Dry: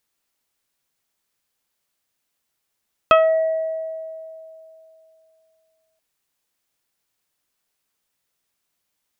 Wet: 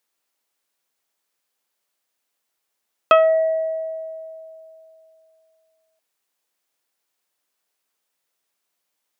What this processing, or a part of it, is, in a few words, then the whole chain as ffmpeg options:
filter by subtraction: -filter_complex "[0:a]asplit=2[s0][s1];[s1]lowpass=520,volume=-1[s2];[s0][s2]amix=inputs=2:normalize=0,volume=0.891"

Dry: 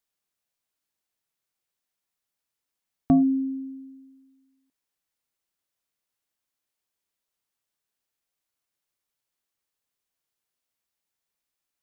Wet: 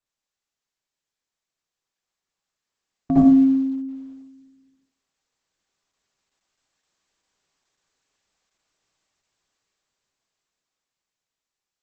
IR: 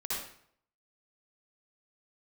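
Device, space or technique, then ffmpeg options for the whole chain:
speakerphone in a meeting room: -filter_complex "[1:a]atrim=start_sample=2205[s0];[0:a][s0]afir=irnorm=-1:irlink=0,dynaudnorm=f=360:g=13:m=5.01,volume=0.668" -ar 48000 -c:a libopus -b:a 12k

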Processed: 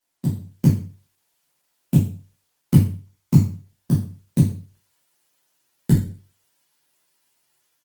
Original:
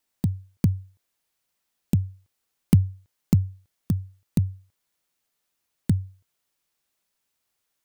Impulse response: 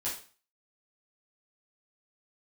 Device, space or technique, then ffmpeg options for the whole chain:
far-field microphone of a smart speaker: -filter_complex "[0:a]asplit=3[s0][s1][s2];[s0]afade=t=out:st=2.74:d=0.02[s3];[s1]aecho=1:1:0.9:0.38,afade=t=in:st=2.74:d=0.02,afade=t=out:st=3.4:d=0.02[s4];[s2]afade=t=in:st=3.4:d=0.02[s5];[s3][s4][s5]amix=inputs=3:normalize=0[s6];[1:a]atrim=start_sample=2205[s7];[s6][s7]afir=irnorm=-1:irlink=0,highpass=99,dynaudnorm=f=250:g=3:m=2" -ar 48000 -c:a libopus -b:a 16k

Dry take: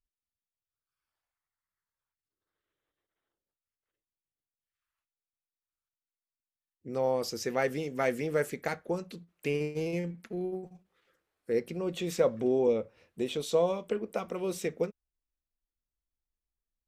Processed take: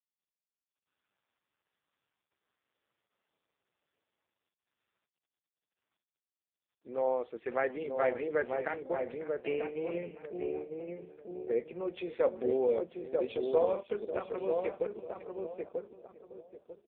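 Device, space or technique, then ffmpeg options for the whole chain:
satellite phone: -filter_complex "[0:a]highpass=370,lowpass=3300,aecho=1:1:551:0.158,asplit=2[s0][s1];[s1]adelay=942,lowpass=f=920:p=1,volume=0.708,asplit=2[s2][s3];[s3]adelay=942,lowpass=f=920:p=1,volume=0.31,asplit=2[s4][s5];[s5]adelay=942,lowpass=f=920:p=1,volume=0.31,asplit=2[s6][s7];[s7]adelay=942,lowpass=f=920:p=1,volume=0.31[s8];[s0][s2][s4][s6][s8]amix=inputs=5:normalize=0" -ar 8000 -c:a libopencore_amrnb -b:a 4750

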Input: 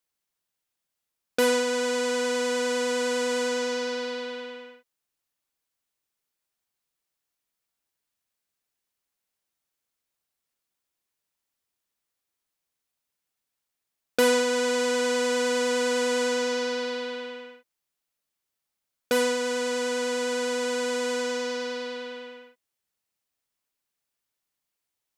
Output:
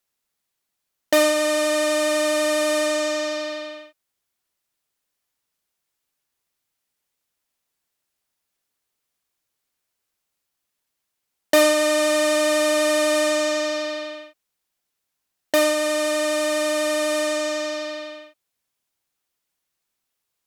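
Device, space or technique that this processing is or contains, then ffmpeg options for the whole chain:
nightcore: -af "asetrate=54243,aresample=44100,volume=1.88"

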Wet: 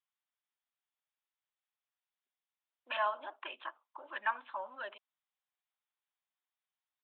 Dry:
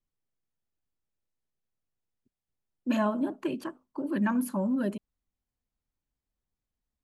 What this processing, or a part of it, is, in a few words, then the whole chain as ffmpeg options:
musical greeting card: -af "aresample=8000,aresample=44100,highpass=f=800:w=0.5412,highpass=f=800:w=1.3066,equalizer=f=3900:t=o:w=0.55:g=4,volume=1.12"

